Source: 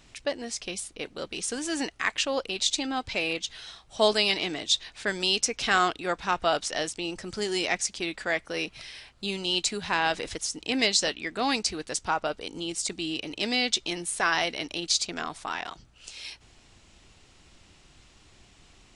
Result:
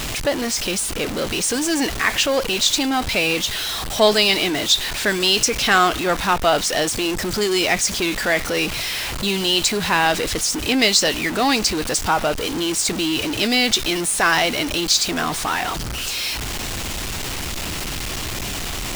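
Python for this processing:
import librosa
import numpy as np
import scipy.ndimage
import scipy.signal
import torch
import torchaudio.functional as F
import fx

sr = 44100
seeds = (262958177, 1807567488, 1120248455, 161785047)

y = x + 0.5 * 10.0 ** (-27.0 / 20.0) * np.sign(x)
y = y * 10.0 ** (6.0 / 20.0)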